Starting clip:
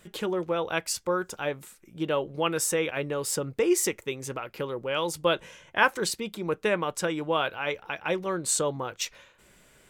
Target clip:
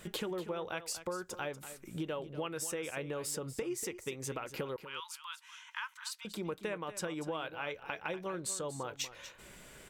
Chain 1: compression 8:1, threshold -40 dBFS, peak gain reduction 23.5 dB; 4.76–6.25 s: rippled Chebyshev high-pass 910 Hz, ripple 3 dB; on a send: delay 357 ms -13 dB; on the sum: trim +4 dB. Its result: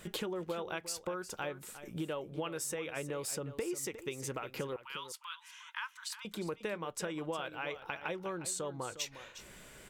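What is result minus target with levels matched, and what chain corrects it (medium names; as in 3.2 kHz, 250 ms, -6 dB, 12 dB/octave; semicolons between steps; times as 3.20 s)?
echo 117 ms late
compression 8:1, threshold -40 dBFS, peak gain reduction 23.5 dB; 4.76–6.25 s: rippled Chebyshev high-pass 910 Hz, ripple 3 dB; on a send: delay 240 ms -13 dB; on the sum: trim +4 dB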